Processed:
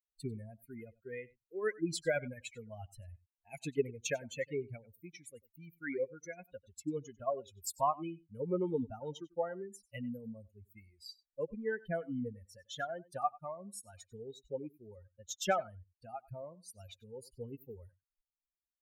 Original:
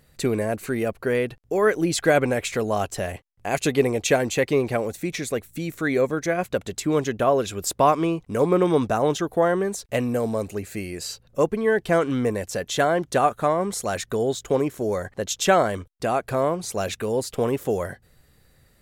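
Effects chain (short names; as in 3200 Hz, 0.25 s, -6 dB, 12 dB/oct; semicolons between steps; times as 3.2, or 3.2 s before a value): per-bin expansion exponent 3; echo 95 ms -22 dB; gain -8.5 dB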